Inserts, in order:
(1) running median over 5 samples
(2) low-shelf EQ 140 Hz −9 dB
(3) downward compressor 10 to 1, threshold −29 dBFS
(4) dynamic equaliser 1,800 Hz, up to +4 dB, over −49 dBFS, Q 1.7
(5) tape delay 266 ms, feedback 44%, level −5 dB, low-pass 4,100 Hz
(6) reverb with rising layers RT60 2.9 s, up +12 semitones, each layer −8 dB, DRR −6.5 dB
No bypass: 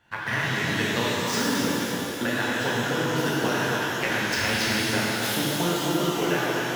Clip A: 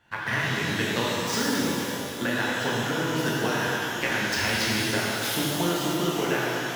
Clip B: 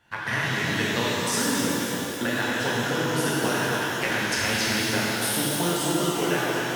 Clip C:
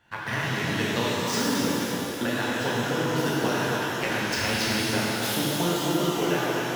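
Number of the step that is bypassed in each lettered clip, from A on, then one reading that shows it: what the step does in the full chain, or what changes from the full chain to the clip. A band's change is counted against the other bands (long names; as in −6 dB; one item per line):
5, change in integrated loudness −1.0 LU
1, 8 kHz band +3.5 dB
4, 2 kHz band −2.5 dB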